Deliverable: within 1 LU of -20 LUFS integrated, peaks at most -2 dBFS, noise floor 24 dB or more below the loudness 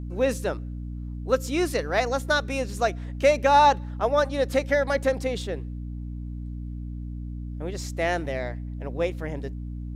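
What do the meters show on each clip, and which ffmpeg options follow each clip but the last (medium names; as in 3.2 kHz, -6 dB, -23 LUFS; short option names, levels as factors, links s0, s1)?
hum 60 Hz; highest harmonic 300 Hz; hum level -31 dBFS; loudness -25.5 LUFS; peak level -7.5 dBFS; loudness target -20.0 LUFS
-> -af "bandreject=f=60:t=h:w=4,bandreject=f=120:t=h:w=4,bandreject=f=180:t=h:w=4,bandreject=f=240:t=h:w=4,bandreject=f=300:t=h:w=4"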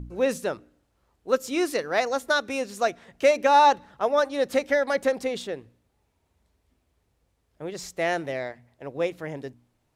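hum not found; loudness -25.0 LUFS; peak level -8.5 dBFS; loudness target -20.0 LUFS
-> -af "volume=1.78"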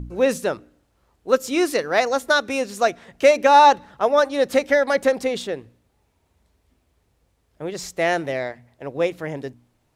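loudness -20.0 LUFS; peak level -3.5 dBFS; noise floor -67 dBFS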